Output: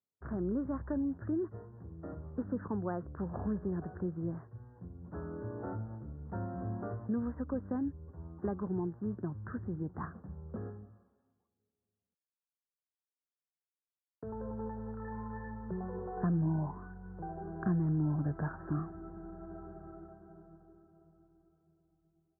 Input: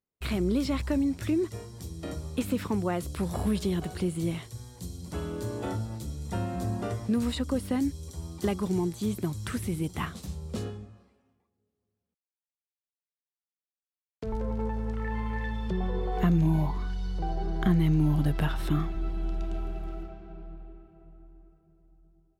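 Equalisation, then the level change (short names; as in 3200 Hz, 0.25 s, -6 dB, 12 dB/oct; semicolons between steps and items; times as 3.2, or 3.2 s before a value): HPF 70 Hz 24 dB/oct; steep low-pass 1700 Hz 96 dB/oct; -7.0 dB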